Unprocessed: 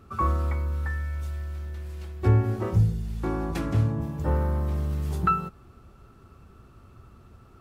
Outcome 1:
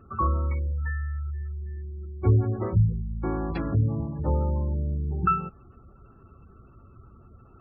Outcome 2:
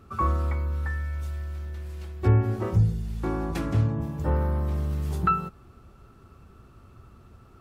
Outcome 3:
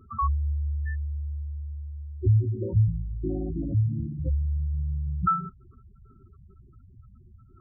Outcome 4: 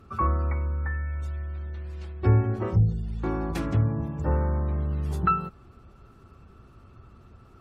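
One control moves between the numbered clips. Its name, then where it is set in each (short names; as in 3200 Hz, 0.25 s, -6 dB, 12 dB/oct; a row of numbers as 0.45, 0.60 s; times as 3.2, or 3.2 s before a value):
spectral gate, under each frame's peak: -25, -60, -10, -45 dB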